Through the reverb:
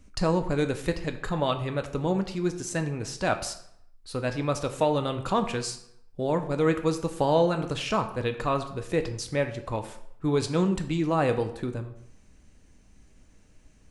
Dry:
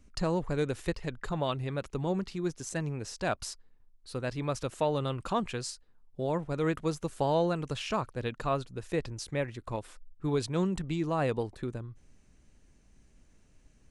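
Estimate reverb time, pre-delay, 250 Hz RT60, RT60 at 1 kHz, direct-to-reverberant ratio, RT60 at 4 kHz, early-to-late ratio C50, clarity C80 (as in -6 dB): 0.70 s, 3 ms, 0.65 s, 0.75 s, 6.5 dB, 0.55 s, 11.5 dB, 14.0 dB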